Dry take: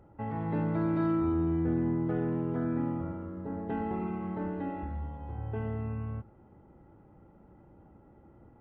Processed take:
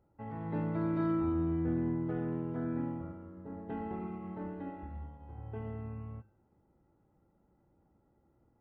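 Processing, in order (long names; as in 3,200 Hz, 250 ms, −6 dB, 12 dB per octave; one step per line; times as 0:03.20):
hum removal 103.1 Hz, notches 35
expander for the loud parts 1.5 to 1, over −49 dBFS
level −2.5 dB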